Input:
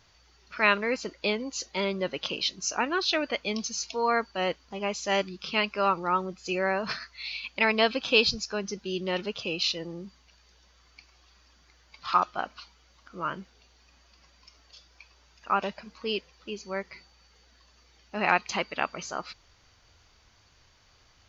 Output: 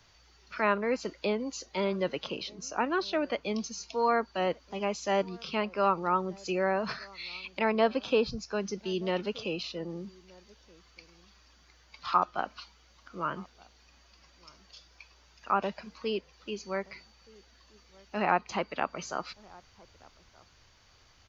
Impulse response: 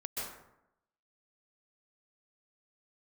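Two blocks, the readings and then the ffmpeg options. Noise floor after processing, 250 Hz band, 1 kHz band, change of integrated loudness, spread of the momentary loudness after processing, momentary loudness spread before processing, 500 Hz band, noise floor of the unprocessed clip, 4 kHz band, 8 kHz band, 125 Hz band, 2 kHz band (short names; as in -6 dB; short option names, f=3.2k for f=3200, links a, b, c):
-61 dBFS, 0.0 dB, -1.5 dB, -3.0 dB, 12 LU, 14 LU, 0.0 dB, -61 dBFS, -9.0 dB, n/a, 0.0 dB, -7.0 dB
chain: -filter_complex "[0:a]acrossover=split=130|360|1400[a][b][c][d];[d]acompressor=threshold=-39dB:ratio=6[e];[a][b][c][e]amix=inputs=4:normalize=0,asplit=2[f][g];[g]adelay=1224,volume=-24dB,highshelf=f=4k:g=-27.6[h];[f][h]amix=inputs=2:normalize=0"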